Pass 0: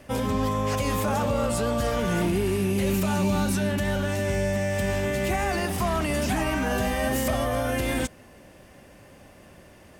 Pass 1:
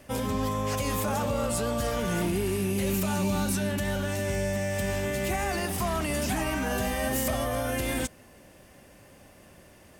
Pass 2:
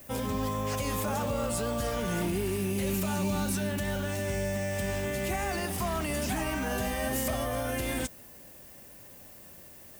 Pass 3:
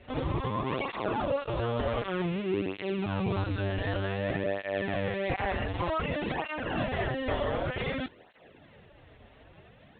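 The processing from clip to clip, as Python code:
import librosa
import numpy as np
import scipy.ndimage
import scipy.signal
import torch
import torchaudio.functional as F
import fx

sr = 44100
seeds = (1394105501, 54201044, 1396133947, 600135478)

y1 = fx.high_shelf(x, sr, hz=5900.0, db=6.5)
y1 = y1 * 10.0 ** (-3.5 / 20.0)
y2 = fx.dmg_noise_colour(y1, sr, seeds[0], colour='violet', level_db=-49.0)
y2 = y2 * 10.0 ** (-2.5 / 20.0)
y3 = fx.lpc_vocoder(y2, sr, seeds[1], excitation='pitch_kept', order=10)
y3 = fx.flanger_cancel(y3, sr, hz=0.54, depth_ms=6.4)
y3 = y3 * 10.0 ** (4.5 / 20.0)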